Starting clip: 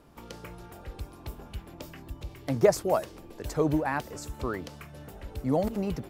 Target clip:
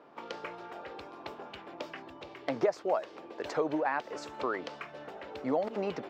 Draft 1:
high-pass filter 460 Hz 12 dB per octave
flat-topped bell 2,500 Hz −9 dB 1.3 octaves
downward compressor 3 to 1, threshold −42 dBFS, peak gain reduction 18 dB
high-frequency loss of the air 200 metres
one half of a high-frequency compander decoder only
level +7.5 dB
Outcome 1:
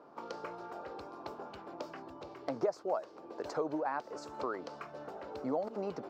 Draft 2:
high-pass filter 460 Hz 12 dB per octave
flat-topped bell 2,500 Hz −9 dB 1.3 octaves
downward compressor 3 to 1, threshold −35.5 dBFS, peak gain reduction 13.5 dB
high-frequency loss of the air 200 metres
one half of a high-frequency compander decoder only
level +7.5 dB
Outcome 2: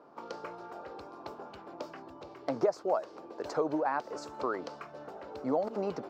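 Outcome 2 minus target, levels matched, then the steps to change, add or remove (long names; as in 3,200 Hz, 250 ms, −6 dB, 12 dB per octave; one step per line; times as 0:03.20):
2,000 Hz band −5.0 dB
remove: flat-topped bell 2,500 Hz −9 dB 1.3 octaves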